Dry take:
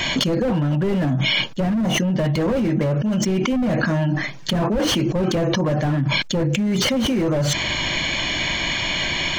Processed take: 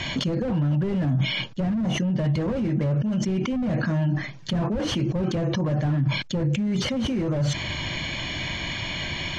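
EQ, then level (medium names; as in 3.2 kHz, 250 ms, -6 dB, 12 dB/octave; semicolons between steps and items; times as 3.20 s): low-pass 7 kHz 12 dB/octave; peaking EQ 97 Hz +9 dB 1.9 oct; -8.0 dB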